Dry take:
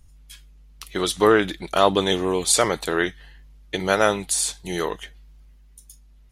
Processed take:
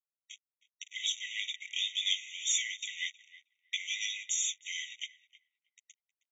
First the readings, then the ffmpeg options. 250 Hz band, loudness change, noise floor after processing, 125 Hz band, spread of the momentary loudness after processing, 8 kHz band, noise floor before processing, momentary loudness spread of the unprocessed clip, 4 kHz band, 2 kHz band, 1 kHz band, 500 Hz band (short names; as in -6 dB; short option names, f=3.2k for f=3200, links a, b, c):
under -40 dB, -12.0 dB, under -85 dBFS, under -40 dB, 17 LU, -8.0 dB, -51 dBFS, 10 LU, -4.5 dB, -11.0 dB, under -40 dB, under -40 dB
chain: -filter_complex "[0:a]acrossover=split=2200[a][b];[a]alimiter=limit=-14dB:level=0:latency=1:release=131[c];[c][b]amix=inputs=2:normalize=0,acrusher=bits=5:mix=0:aa=0.5,asoftclip=type=tanh:threshold=-17.5dB,asplit=2[d][e];[e]adelay=315,lowpass=f=1k:p=1,volume=-11dB,asplit=2[f][g];[g]adelay=315,lowpass=f=1k:p=1,volume=0.27,asplit=2[h][i];[i]adelay=315,lowpass=f=1k:p=1,volume=0.27[j];[f][h][j]amix=inputs=3:normalize=0[k];[d][k]amix=inputs=2:normalize=0,aresample=16000,aresample=44100,afftfilt=real='re*eq(mod(floor(b*sr/1024/1900),2),1)':imag='im*eq(mod(floor(b*sr/1024/1900),2),1)':win_size=1024:overlap=0.75"